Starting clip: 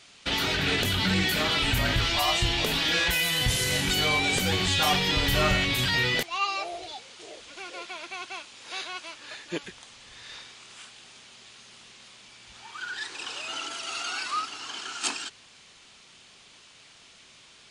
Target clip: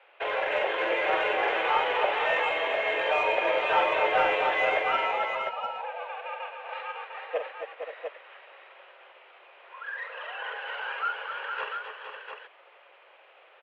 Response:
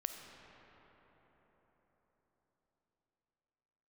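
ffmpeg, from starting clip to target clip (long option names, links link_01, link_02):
-filter_complex "[0:a]highpass=frequency=350:width_type=q:width=0.5412,highpass=frequency=350:width_type=q:width=1.307,lowpass=frequency=2600:width_type=q:width=0.5176,lowpass=frequency=2600:width_type=q:width=0.7071,lowpass=frequency=2600:width_type=q:width=1.932,afreqshift=150,asplit=2[link_01][link_02];[link_02]asoftclip=type=tanh:threshold=-23.5dB,volume=-6.5dB[link_03];[link_01][link_03]amix=inputs=2:normalize=0,atempo=1.3,tiltshelf=frequency=940:gain=8,aecho=1:1:44|260|269|462|531|700:0.422|0.266|0.335|0.422|0.266|0.501"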